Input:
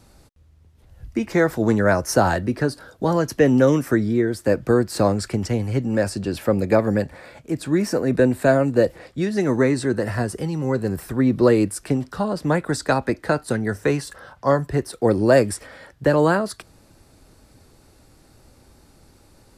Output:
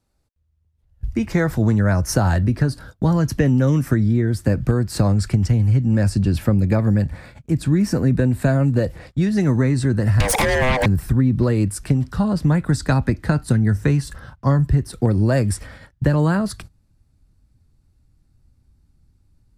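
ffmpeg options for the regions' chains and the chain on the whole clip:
-filter_complex "[0:a]asettb=1/sr,asplit=3[s0][s1][s2];[s0]atrim=end=10.204[s3];[s1]atrim=start=10.2:end=10.86,asetpts=PTS-STARTPTS,afade=t=in:d=0.004:c=qsin,afade=t=out:st=0.656:d=0.004:c=qsin,afreqshift=380,acompressor=threshold=0.0355:ratio=16:attack=3.2:release=140:knee=1:detection=peak,aeval=exprs='0.224*sin(PI/2*10*val(0)/0.224)':c=same[s4];[s2]atrim=start=10.856[s5];[s3][s4]acrossfade=d=0.004:c1=hsin:c2=qsin[s6];[s6][s5]acrossfade=d=0.004:c1=qsin:c2=hsin,agate=range=0.0891:threshold=0.00794:ratio=16:detection=peak,asubboost=boost=10.5:cutoff=160,acompressor=threshold=0.2:ratio=6,volume=1.12"

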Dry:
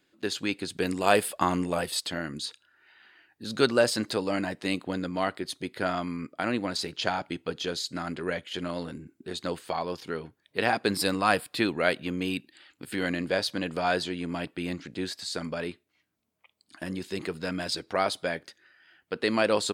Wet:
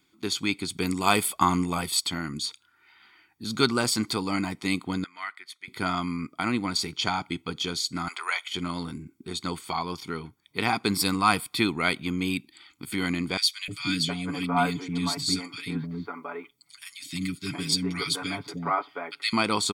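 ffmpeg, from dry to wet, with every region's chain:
-filter_complex "[0:a]asettb=1/sr,asplit=3[s0][s1][s2];[s0]atrim=end=5.044[s3];[s1]atrim=start=5.04:end=5.68,asetpts=PTS-STARTPTS,afade=t=in:d=0.004:c=qsin,afade=t=out:st=0.636:d=0.004:c=qsin,bandpass=f=1800:t=q:w=3.1,aemphasis=mode=production:type=bsi[s4];[s2]atrim=start=5.676[s5];[s3][s4]acrossfade=d=0.004:c1=hsin:c2=qsin[s6];[s6][s5]acrossfade=d=0.004:c1=qsin:c2=hsin,asettb=1/sr,asplit=3[s7][s8][s9];[s7]atrim=end=8.084[s10];[s8]atrim=start=8.08:end=8.48,asetpts=PTS-STARTPTS,afade=t=in:d=0.004:c=qsin,afade=t=out:st=0.396:d=0.004:c=qsin,acontrast=62,highpass=f=770:w=0.5412,highpass=f=770:w=1.3066[s11];[s9]atrim=start=8.476[s12];[s10][s11]acrossfade=d=0.004:c1=hsin:c2=qsin[s13];[s13][s12]acrossfade=d=0.004:c1=qsin:c2=hsin,asettb=1/sr,asplit=3[s14][s15][s16];[s14]atrim=end=13.374[s17];[s15]atrim=start=13.37:end=19.33,asetpts=PTS-STARTPTS,afade=t=in:d=0.004:c=qsin,afade=t=out:st=5.956:d=0.004:c=qsin,aecho=1:1:7:0.93,atrim=end_sample=262836,acrossover=split=340|1800[s18][s19][s20];[s18]adelay=310[s21];[s19]adelay=720[s22];[s21][s22][s20]amix=inputs=3:normalize=0,atrim=end_sample=262836[s23];[s16]atrim=start=19.326[s24];[s17][s23]acrossfade=d=0.004:c1=hsin:c2=qsin[s25];[s25][s24]acrossfade=d=0.004:c1=qsin:c2=hsin,highshelf=f=4700:g=4.5,aecho=1:1:0.9:0.78"

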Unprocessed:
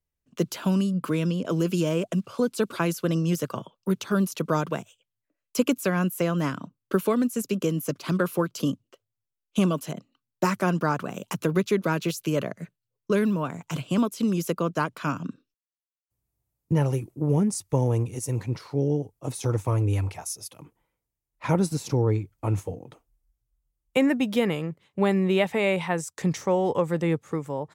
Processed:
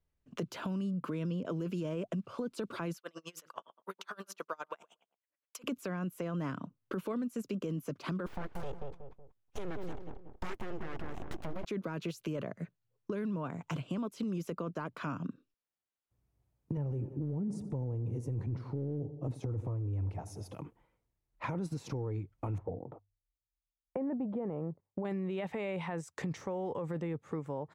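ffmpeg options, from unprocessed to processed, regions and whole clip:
-filter_complex "[0:a]asettb=1/sr,asplit=3[s0][s1][s2];[s0]atrim=end=2.974[s3];[s1]atrim=start=2.97:end=5.64,asetpts=PTS-STARTPTS,afade=t=in:d=0.004:c=qsin,afade=t=out:st=2.666:d=0.004:c=qsin,highpass=890,asplit=2[s4][s5];[s5]adelay=118,lowpass=f=1300:p=1,volume=0.158,asplit=2[s6][s7];[s7]adelay=118,lowpass=f=1300:p=1,volume=0.28,asplit=2[s8][s9];[s9]adelay=118,lowpass=f=1300:p=1,volume=0.28[s10];[s4][s6][s8][s10]amix=inputs=4:normalize=0,atrim=end_sample=117747,aeval=exprs='val(0)*pow(10,-34*(0.5-0.5*cos(2*PI*9.7*n/s))/20)':c=same[s11];[s2]atrim=start=5.636[s12];[s3][s11]acrossfade=d=0.004:c1=hsin:c2=qsin[s13];[s13][s12]acrossfade=d=0.004:c1=qsin:c2=hsin,asettb=1/sr,asplit=3[s14][s15][s16];[s14]atrim=end=8.264[s17];[s15]atrim=start=8.26:end=11.65,asetpts=PTS-STARTPTS,afade=t=in:d=0.004:c=qsin,afade=t=out:st=3.386:d=0.004:c=qsin,aeval=exprs='abs(val(0))':c=same,asplit=2[s18][s19];[s19]adelay=185,lowpass=f=1100:p=1,volume=0.473,asplit=2[s20][s21];[s21]adelay=185,lowpass=f=1100:p=1,volume=0.24,asplit=2[s22][s23];[s23]adelay=185,lowpass=f=1100:p=1,volume=0.24[s24];[s18][s20][s22][s24]amix=inputs=4:normalize=0,atrim=end_sample=149499[s25];[s16]atrim=start=11.646[s26];[s17][s25]acrossfade=d=0.004:c1=hsin:c2=qsin[s27];[s27][s26]acrossfade=d=0.004:c1=qsin:c2=hsin,asettb=1/sr,asplit=3[s28][s29][s30];[s28]atrim=end=16.774[s31];[s29]atrim=start=16.77:end=20.55,asetpts=PTS-STARTPTS,afade=t=in:d=0.004:c=qsin,afade=t=out:st=3.776:d=0.004:c=qsin,tiltshelf=f=790:g=8.5,aecho=1:1:87|174|261|348|435:0.0944|0.0548|0.0318|0.0184|0.0107,atrim=end_sample=166698[s32];[s30]atrim=start=20.546[s33];[s31][s32]acrossfade=d=0.004:c1=hsin:c2=qsin[s34];[s34][s33]acrossfade=d=0.004:c1=qsin:c2=hsin,asettb=1/sr,asplit=3[s35][s36][s37];[s35]atrim=end=22.584[s38];[s36]atrim=start=22.58:end=25.05,asetpts=PTS-STARTPTS,afade=t=in:d=0.004:c=qsin,afade=t=out:st=2.466:d=0.004:c=qsin,agate=range=0.0631:threshold=0.00141:ratio=16:release=100:detection=peak,lowpass=f=810:t=q:w=1.5,bandreject=f=50:t=h:w=6,bandreject=f=100:t=h:w=6[s39];[s37]atrim=start=25.046[s40];[s38][s39]acrossfade=d=0.004:c1=hsin:c2=qsin[s41];[s41][s40]acrossfade=d=0.004:c1=qsin:c2=hsin,lowpass=f=1900:p=1,alimiter=limit=0.0841:level=0:latency=1:release=11,acompressor=threshold=0.00631:ratio=2.5,volume=1.68"

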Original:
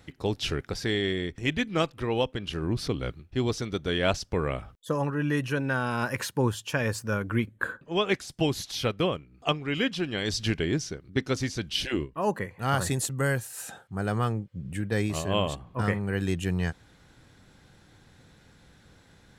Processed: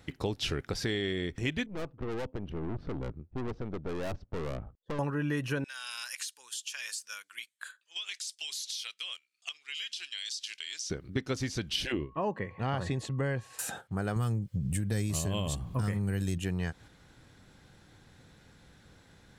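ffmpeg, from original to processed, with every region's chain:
-filter_complex "[0:a]asettb=1/sr,asplit=3[s0][s1][s2];[s0]atrim=end=1.664[s3];[s1]atrim=start=1.66:end=4.99,asetpts=PTS-STARTPTS,afade=t=in:d=0.004:c=qsin,afade=t=out:st=3.326:d=0.004:c=qsin,acrusher=bits=8:mode=log:mix=0:aa=0.000001,adynamicsmooth=sensitivity=0.5:basefreq=780,aeval=exprs='(tanh(63.1*val(0)+0.7)-tanh(0.7))/63.1':c=same[s4];[s2]atrim=start=4.986[s5];[s3][s4]acrossfade=d=0.004:c1=hsin:c2=qsin[s6];[s6][s5]acrossfade=d=0.004:c1=qsin:c2=hsin,asettb=1/sr,asplit=3[s7][s8][s9];[s7]atrim=end=5.644[s10];[s8]atrim=start=5.64:end=10.9,asetpts=PTS-STARTPTS,afade=t=in:d=0.004:c=qsin,afade=t=out:st=5.256:d=0.004:c=qsin,asuperpass=centerf=5500:order=4:qfactor=0.84,highshelf=f=6800:g=9,acompressor=threshold=0.0126:ratio=8:attack=3.2:release=140:knee=1:detection=peak[s11];[s9]atrim=start=10.896[s12];[s10][s11]acrossfade=d=0.004:c1=hsin:c2=qsin[s13];[s13][s12]acrossfade=d=0.004:c1=qsin:c2=hsin,asettb=1/sr,asplit=3[s14][s15][s16];[s14]atrim=end=11.924[s17];[s15]atrim=start=11.92:end=13.59,asetpts=PTS-STARTPTS,afade=t=in:d=0.004:c=qsin,afade=t=out:st=1.666:d=0.004:c=qsin,lowpass=3300,equalizer=f=1400:w=4:g=-7.5,aeval=exprs='val(0)+0.00126*sin(2*PI*1100*n/s)':c=same[s18];[s16]atrim=start=13.586[s19];[s17][s18]acrossfade=d=0.004:c1=hsin:c2=qsin[s20];[s20][s19]acrossfade=d=0.004:c1=qsin:c2=hsin,asettb=1/sr,asplit=3[s21][s22][s23];[s21]atrim=end=14.164[s24];[s22]atrim=start=14.16:end=16.38,asetpts=PTS-STARTPTS,afade=t=in:d=0.004:c=qsin,afade=t=out:st=2.216:d=0.004:c=qsin,bass=f=250:g=10,treble=f=4000:g=14,acompressor=threshold=0.0708:ratio=2.5:attack=3.2:release=140:knee=1:detection=peak[s25];[s23]atrim=start=16.376[s26];[s24][s25]acrossfade=d=0.004:c1=hsin:c2=qsin[s27];[s27][s26]acrossfade=d=0.004:c1=qsin:c2=hsin,agate=range=0.501:threshold=0.00398:ratio=16:detection=peak,acompressor=threshold=0.0158:ratio=3,volume=1.68"

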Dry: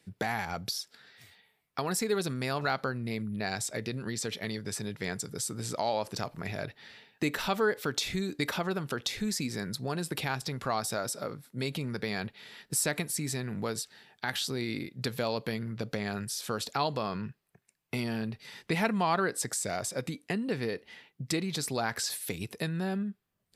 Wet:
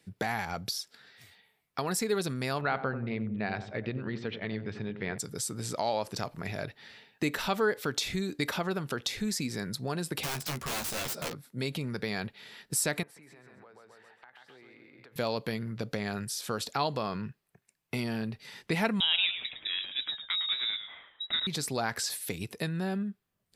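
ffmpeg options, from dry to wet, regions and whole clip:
-filter_complex "[0:a]asettb=1/sr,asplit=3[s0][s1][s2];[s0]atrim=end=2.614[s3];[s1]atrim=start=2.61:end=5.18,asetpts=PTS-STARTPTS,afade=t=in:d=0.004:c=qsin,afade=t=out:st=2.566:d=0.004:c=qsin,lowpass=f=3200:w=0.5412,lowpass=f=3200:w=1.3066,asplit=2[s4][s5];[s5]adelay=91,lowpass=f=840:p=1,volume=0.376,asplit=2[s6][s7];[s7]adelay=91,lowpass=f=840:p=1,volume=0.52,asplit=2[s8][s9];[s9]adelay=91,lowpass=f=840:p=1,volume=0.52,asplit=2[s10][s11];[s11]adelay=91,lowpass=f=840:p=1,volume=0.52,asplit=2[s12][s13];[s13]adelay=91,lowpass=f=840:p=1,volume=0.52,asplit=2[s14][s15];[s15]adelay=91,lowpass=f=840:p=1,volume=0.52[s16];[s4][s6][s8][s10][s12][s14][s16]amix=inputs=7:normalize=0,atrim=end_sample=113337[s17];[s2]atrim=start=5.176[s18];[s3][s17]acrossfade=d=0.004:c1=hsin:c2=qsin[s19];[s19][s18]acrossfade=d=0.004:c1=qsin:c2=hsin,asettb=1/sr,asplit=3[s20][s21][s22];[s20]atrim=end=10.234[s23];[s21]atrim=start=10.23:end=11.35,asetpts=PTS-STARTPTS,afade=t=in:d=0.004:c=qsin,afade=t=out:st=1.116:d=0.004:c=qsin,aeval=exprs='(mod(29.9*val(0)+1,2)-1)/29.9':c=same,asplit=2[s24][s25];[s25]adelay=13,volume=0.596[s26];[s24][s26]amix=inputs=2:normalize=0,atrim=end_sample=49392[s27];[s22]atrim=start=11.346[s28];[s23][s27]acrossfade=d=0.004:c1=hsin:c2=qsin[s29];[s29][s28]acrossfade=d=0.004:c1=qsin:c2=hsin,asettb=1/sr,asplit=3[s30][s31][s32];[s30]atrim=end=13.034[s33];[s31]atrim=start=13.03:end=15.16,asetpts=PTS-STARTPTS,afade=t=in:d=0.004:c=qsin,afade=t=out:st=2.126:d=0.004:c=qsin,acrossover=split=440 2400:gain=0.141 1 0.0631[s34][s35][s36];[s34][s35][s36]amix=inputs=3:normalize=0,aecho=1:1:132|264|396|528:0.596|0.179|0.0536|0.0161,atrim=end_sample=93933,acompressor=threshold=0.00282:ratio=8:attack=3.2:release=140:knee=1:detection=peak[s37];[s32]atrim=start=15.156[s38];[s33][s37]acrossfade=d=0.004:c1=hsin:c2=qsin[s39];[s39][s38]acrossfade=d=0.004:c1=qsin:c2=hsin,asettb=1/sr,asplit=3[s40][s41][s42];[s40]atrim=end=19.004[s43];[s41]atrim=start=19:end=21.47,asetpts=PTS-STARTPTS,afade=t=in:d=0.004:c=qsin,afade=t=out:st=2.466:d=0.004:c=qsin,lowpass=f=3400:t=q:w=0.5098,lowpass=f=3400:t=q:w=0.6013,lowpass=f=3400:t=q:w=0.9,lowpass=f=3400:t=q:w=2.563,afreqshift=-4000,asplit=5[s44][s45][s46][s47][s48];[s45]adelay=108,afreqshift=-100,volume=0.316[s49];[s46]adelay=216,afreqshift=-200,volume=0.114[s50];[s47]adelay=324,afreqshift=-300,volume=0.0412[s51];[s48]adelay=432,afreqshift=-400,volume=0.0148[s52];[s44][s49][s50][s51][s52]amix=inputs=5:normalize=0,atrim=end_sample=108927[s53];[s42]atrim=start=21.466[s54];[s43][s53]acrossfade=d=0.004:c1=hsin:c2=qsin[s55];[s55][s54]acrossfade=d=0.004:c1=qsin:c2=hsin"

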